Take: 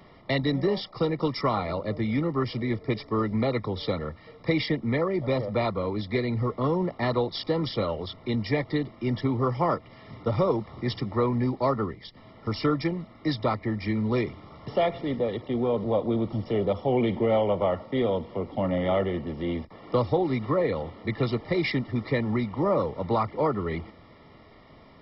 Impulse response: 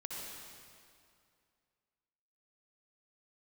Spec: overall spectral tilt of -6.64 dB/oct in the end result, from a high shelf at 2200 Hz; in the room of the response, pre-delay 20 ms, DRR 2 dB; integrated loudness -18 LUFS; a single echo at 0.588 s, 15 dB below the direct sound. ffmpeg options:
-filter_complex "[0:a]highshelf=f=2.2k:g=-5,aecho=1:1:588:0.178,asplit=2[a][b];[1:a]atrim=start_sample=2205,adelay=20[c];[b][c]afir=irnorm=-1:irlink=0,volume=-2dB[d];[a][d]amix=inputs=2:normalize=0,volume=7.5dB"

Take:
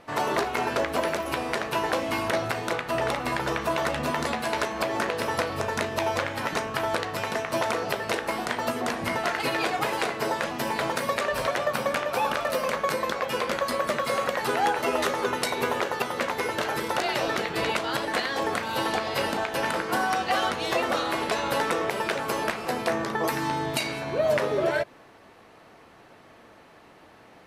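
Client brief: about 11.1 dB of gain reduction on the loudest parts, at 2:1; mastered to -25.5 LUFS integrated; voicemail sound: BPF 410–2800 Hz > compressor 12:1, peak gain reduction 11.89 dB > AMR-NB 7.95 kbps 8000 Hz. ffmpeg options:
-af "acompressor=threshold=-42dB:ratio=2,highpass=410,lowpass=2.8k,acompressor=threshold=-43dB:ratio=12,volume=23.5dB" -ar 8000 -c:a libopencore_amrnb -b:a 7950

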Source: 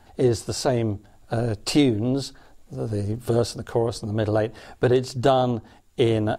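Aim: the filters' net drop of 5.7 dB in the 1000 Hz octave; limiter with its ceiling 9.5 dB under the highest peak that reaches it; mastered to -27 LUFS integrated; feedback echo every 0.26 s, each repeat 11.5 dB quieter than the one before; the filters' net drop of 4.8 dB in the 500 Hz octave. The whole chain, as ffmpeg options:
-af "equalizer=f=500:t=o:g=-5,equalizer=f=1k:t=o:g=-6,alimiter=limit=-18dB:level=0:latency=1,aecho=1:1:260|520|780:0.266|0.0718|0.0194,volume=2dB"

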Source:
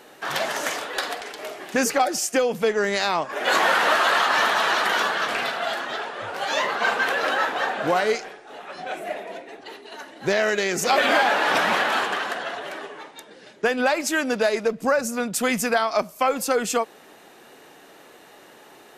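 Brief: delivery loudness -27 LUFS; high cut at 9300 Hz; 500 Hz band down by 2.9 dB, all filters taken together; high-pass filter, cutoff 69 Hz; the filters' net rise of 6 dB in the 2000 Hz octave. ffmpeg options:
-af "highpass=69,lowpass=9.3k,equalizer=f=500:t=o:g=-4,equalizer=f=2k:t=o:g=8,volume=-7.5dB"

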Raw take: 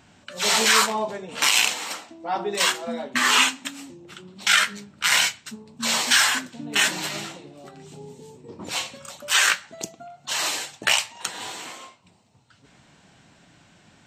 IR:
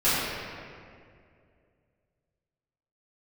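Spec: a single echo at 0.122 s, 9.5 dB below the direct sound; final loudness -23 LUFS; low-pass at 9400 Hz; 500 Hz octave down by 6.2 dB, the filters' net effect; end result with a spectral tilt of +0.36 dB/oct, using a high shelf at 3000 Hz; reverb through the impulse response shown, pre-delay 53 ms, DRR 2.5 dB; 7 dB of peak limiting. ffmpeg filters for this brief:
-filter_complex "[0:a]lowpass=9.4k,equalizer=f=500:t=o:g=-8.5,highshelf=f=3k:g=3.5,alimiter=limit=-9dB:level=0:latency=1,aecho=1:1:122:0.335,asplit=2[a][b];[1:a]atrim=start_sample=2205,adelay=53[c];[b][c]afir=irnorm=-1:irlink=0,volume=-19.5dB[d];[a][d]amix=inputs=2:normalize=0,volume=-2dB"

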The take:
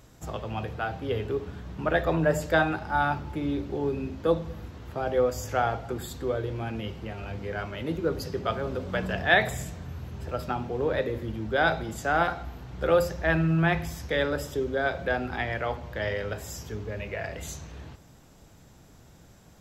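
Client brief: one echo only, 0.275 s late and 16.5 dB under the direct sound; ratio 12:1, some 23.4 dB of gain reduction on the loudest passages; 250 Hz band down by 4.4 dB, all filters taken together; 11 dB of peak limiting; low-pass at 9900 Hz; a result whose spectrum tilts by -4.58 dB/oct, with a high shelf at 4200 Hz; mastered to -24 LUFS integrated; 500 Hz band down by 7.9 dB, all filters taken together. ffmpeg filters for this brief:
-af "lowpass=9.9k,equalizer=f=250:t=o:g=-4,equalizer=f=500:t=o:g=-9,highshelf=f=4.2k:g=6,acompressor=threshold=-41dB:ratio=12,alimiter=level_in=15dB:limit=-24dB:level=0:latency=1,volume=-15dB,aecho=1:1:275:0.15,volume=24.5dB"

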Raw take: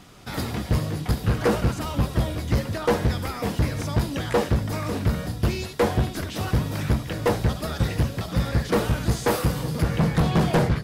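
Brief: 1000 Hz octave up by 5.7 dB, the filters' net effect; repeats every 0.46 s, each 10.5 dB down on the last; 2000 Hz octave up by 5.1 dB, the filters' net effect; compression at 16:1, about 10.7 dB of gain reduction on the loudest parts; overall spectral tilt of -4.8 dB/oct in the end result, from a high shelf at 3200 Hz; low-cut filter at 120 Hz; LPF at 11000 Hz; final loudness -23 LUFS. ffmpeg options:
-af "highpass=120,lowpass=11k,equalizer=f=1k:t=o:g=6,equalizer=f=2k:t=o:g=3,highshelf=f=3.2k:g=4.5,acompressor=threshold=-24dB:ratio=16,aecho=1:1:460|920|1380:0.299|0.0896|0.0269,volume=6.5dB"

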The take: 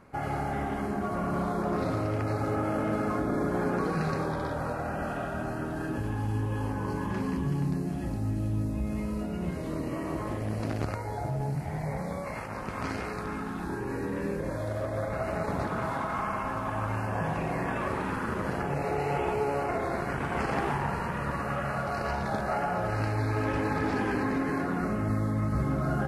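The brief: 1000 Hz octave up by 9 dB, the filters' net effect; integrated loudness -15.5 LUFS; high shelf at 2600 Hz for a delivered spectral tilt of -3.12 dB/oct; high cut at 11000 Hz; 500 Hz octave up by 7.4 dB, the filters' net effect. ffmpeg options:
-af "lowpass=11k,equalizer=f=500:t=o:g=6.5,equalizer=f=1k:t=o:g=9,highshelf=f=2.6k:g=3,volume=10dB"

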